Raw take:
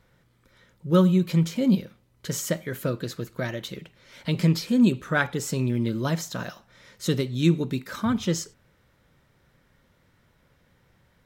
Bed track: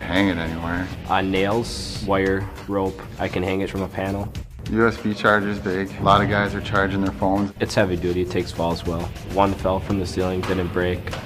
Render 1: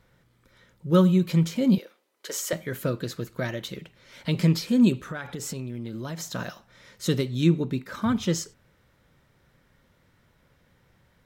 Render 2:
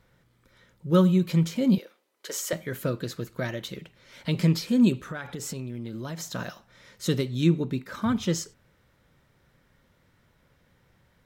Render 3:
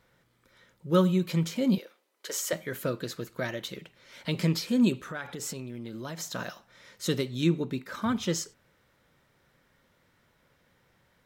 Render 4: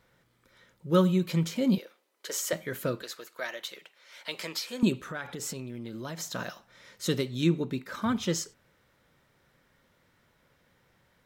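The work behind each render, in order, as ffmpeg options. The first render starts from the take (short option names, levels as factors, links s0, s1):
-filter_complex "[0:a]asettb=1/sr,asplit=3[s0][s1][s2];[s0]atrim=end=1.784[s3];[s1]atrim=start=1.78:end=2.53,asetpts=PTS-STARTPTS,afade=t=in:d=0.004:c=qsin,afade=t=out:st=0.746:d=0.004:c=qsin,highpass=f=360:w=0.5412,highpass=f=360:w=1.3066[s4];[s2]atrim=start=2.526[s5];[s3][s4]acrossfade=d=0.004:c1=hsin:c2=qsin[s6];[s6][s5]acrossfade=d=0.004:c1=qsin:c2=hsin,asettb=1/sr,asplit=3[s7][s8][s9];[s7]atrim=end=5.064[s10];[s8]atrim=start=5.06:end=6.33,asetpts=PTS-STARTPTS,afade=t=in:d=0.004:c=qsin,afade=t=out:st=1.266:d=0.004:c=qsin,acompressor=threshold=0.0355:ratio=16:attack=3.2:release=140:knee=1:detection=peak[s11];[s9]atrim=start=6.326[s12];[s10][s11]acrossfade=d=0.004:c1=hsin:c2=qsin[s13];[s13][s12]acrossfade=d=0.004:c1=qsin:c2=hsin,asettb=1/sr,asplit=3[s14][s15][s16];[s14]atrim=end=7.444[s17];[s15]atrim=start=7.44:end=8.02,asetpts=PTS-STARTPTS,afade=t=in:d=0.004:c=qsin,afade=t=out:st=0.576:d=0.004:c=qsin,highshelf=f=3000:g=-7.5[s18];[s16]atrim=start=8.016[s19];[s17][s18]acrossfade=d=0.004:c1=hsin:c2=qsin[s20];[s20][s19]acrossfade=d=0.004:c1=qsin:c2=hsin"
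-af "volume=0.891"
-af "lowshelf=f=180:g=-9"
-filter_complex "[0:a]asettb=1/sr,asplit=3[s0][s1][s2];[s0]atrim=end=3.024[s3];[s1]atrim=start=3.02:end=4.83,asetpts=PTS-STARTPTS,afade=t=in:d=0.004:c=qsin,afade=t=out:st=1.806:d=0.004:c=qsin,highpass=650[s4];[s2]atrim=start=4.826[s5];[s3][s4]acrossfade=d=0.004:c1=hsin:c2=qsin[s6];[s6][s5]acrossfade=d=0.004:c1=qsin:c2=hsin"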